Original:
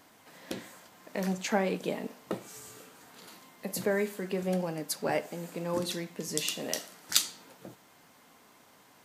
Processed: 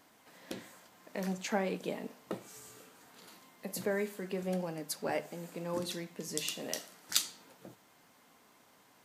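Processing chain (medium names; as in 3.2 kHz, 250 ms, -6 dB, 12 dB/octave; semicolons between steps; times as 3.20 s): hum notches 50/100/150 Hz; trim -4.5 dB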